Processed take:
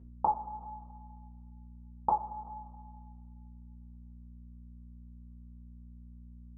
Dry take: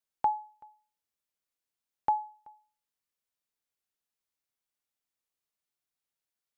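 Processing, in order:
Butterworth low-pass 1,300 Hz 96 dB per octave
mains hum 60 Hz, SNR 13 dB
coupled-rooms reverb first 0.26 s, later 1.9 s, from −20 dB, DRR −5 dB

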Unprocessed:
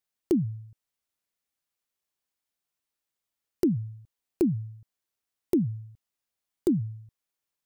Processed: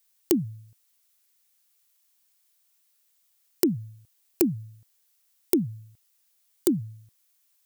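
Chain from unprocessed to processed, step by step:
spectral tilt +3.5 dB per octave
level +6.5 dB

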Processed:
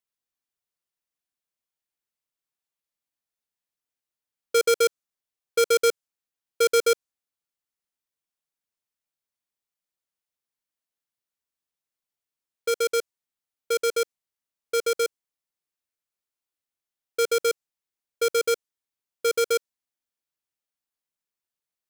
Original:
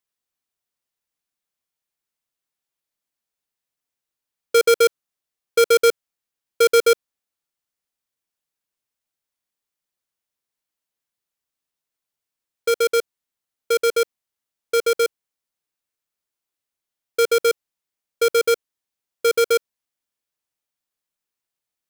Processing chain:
dynamic equaliser 7,000 Hz, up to +4 dB, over −39 dBFS, Q 0.99
level −5.5 dB

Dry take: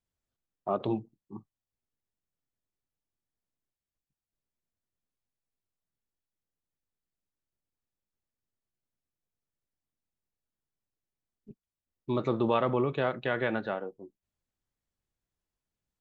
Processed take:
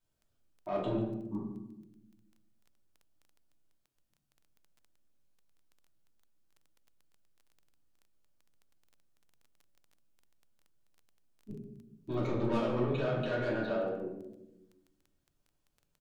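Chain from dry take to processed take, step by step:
soft clipping −26.5 dBFS, distortion −10 dB
notch filter 2,000 Hz, Q 10
brickwall limiter −35 dBFS, peak gain reduction 10 dB
single-tap delay 144 ms −13.5 dB
convolution reverb RT60 0.95 s, pre-delay 3 ms, DRR −5.5 dB
surface crackle 12 per second −49 dBFS

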